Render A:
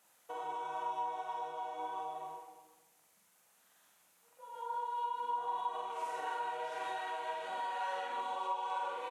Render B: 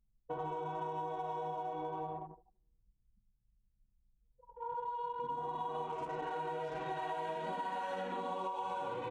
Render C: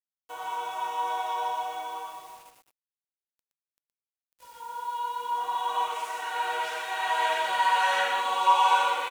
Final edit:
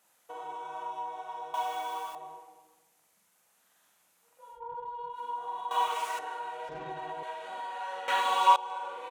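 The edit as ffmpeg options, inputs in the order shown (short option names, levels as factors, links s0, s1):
-filter_complex "[2:a]asplit=3[s0][s1][s2];[1:a]asplit=2[s3][s4];[0:a]asplit=6[s5][s6][s7][s8][s9][s10];[s5]atrim=end=1.542[s11];[s0]atrim=start=1.538:end=2.152[s12];[s6]atrim=start=2.148:end=4.61[s13];[s3]atrim=start=4.51:end=5.19[s14];[s7]atrim=start=5.09:end=5.712[s15];[s1]atrim=start=5.708:end=6.192[s16];[s8]atrim=start=6.188:end=6.692[s17];[s4]atrim=start=6.688:end=7.232[s18];[s9]atrim=start=7.228:end=8.082[s19];[s2]atrim=start=8.078:end=8.562[s20];[s10]atrim=start=8.558[s21];[s11][s12]acrossfade=d=0.004:c1=hsin:c2=hsin[s22];[s22][s13]acrossfade=d=0.004:c1=hsin:c2=hsin[s23];[s23][s14]acrossfade=d=0.1:c1=tri:c2=tri[s24];[s24][s15]acrossfade=d=0.1:c1=tri:c2=tri[s25];[s25][s16]acrossfade=d=0.004:c1=hsin:c2=hsin[s26];[s26][s17]acrossfade=d=0.004:c1=hsin:c2=hsin[s27];[s27][s18]acrossfade=d=0.004:c1=hsin:c2=hsin[s28];[s28][s19]acrossfade=d=0.004:c1=hsin:c2=hsin[s29];[s29][s20]acrossfade=d=0.004:c1=hsin:c2=hsin[s30];[s30][s21]acrossfade=d=0.004:c1=hsin:c2=hsin"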